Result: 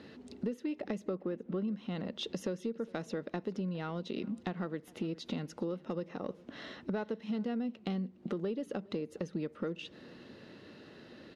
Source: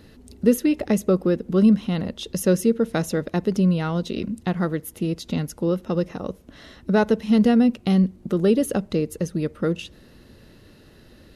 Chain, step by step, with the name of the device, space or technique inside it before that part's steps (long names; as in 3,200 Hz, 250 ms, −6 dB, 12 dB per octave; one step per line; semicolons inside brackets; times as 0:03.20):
0:01.15–0:01.68: low-pass filter 3,200 Hz
AM radio (band-pass filter 190–4,200 Hz; downward compressor 8 to 1, threshold −33 dBFS, peak gain reduction 20.5 dB; soft clipping −21.5 dBFS, distortion −28 dB)
single-tap delay 411 ms −23.5 dB